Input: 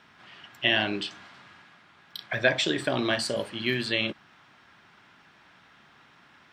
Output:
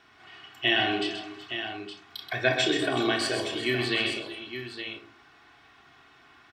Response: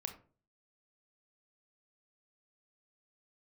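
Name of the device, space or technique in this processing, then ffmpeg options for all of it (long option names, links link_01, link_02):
microphone above a desk: -filter_complex "[0:a]aecho=1:1:2.7:0.69[link_01];[1:a]atrim=start_sample=2205[link_02];[link_01][link_02]afir=irnorm=-1:irlink=0,aecho=1:1:129|373|376|866:0.447|0.126|0.133|0.335"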